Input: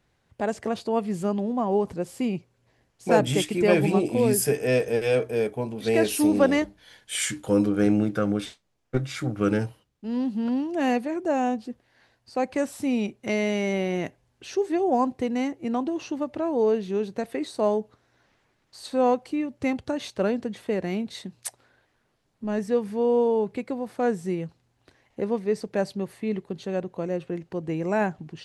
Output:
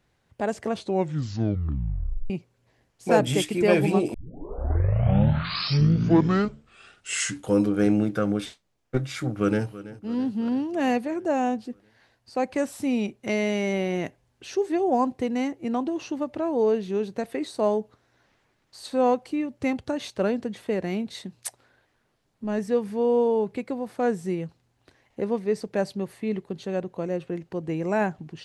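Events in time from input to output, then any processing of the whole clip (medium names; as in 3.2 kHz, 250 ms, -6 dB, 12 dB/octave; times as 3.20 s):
0.70 s: tape stop 1.60 s
4.14 s: tape start 3.38 s
9.24–9.66 s: echo throw 330 ms, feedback 65%, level -16.5 dB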